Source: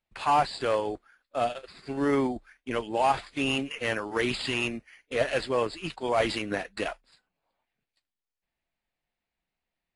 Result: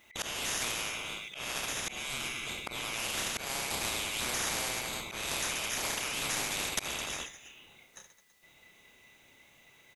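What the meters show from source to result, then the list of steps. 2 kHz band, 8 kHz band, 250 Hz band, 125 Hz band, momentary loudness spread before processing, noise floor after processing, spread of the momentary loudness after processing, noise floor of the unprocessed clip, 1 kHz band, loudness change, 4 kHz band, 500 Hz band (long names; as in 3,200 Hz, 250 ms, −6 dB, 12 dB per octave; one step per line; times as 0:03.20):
−2.0 dB, +13.5 dB, −14.5 dB, −8.0 dB, 10 LU, −62 dBFS, 7 LU, below −85 dBFS, −11.5 dB, −4.5 dB, +2.0 dB, −15.0 dB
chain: neighbouring bands swapped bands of 2,000 Hz
brickwall limiter −23 dBFS, peak gain reduction 11 dB
on a send: reverse bouncing-ball delay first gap 30 ms, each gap 1.4×, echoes 5
on the sum: downward compressor 6 to 1, threshold −31 dBFS, peak gain reduction 8.5 dB
volume swells 265 ms
every bin compressed towards the loudest bin 4 to 1
level +8.5 dB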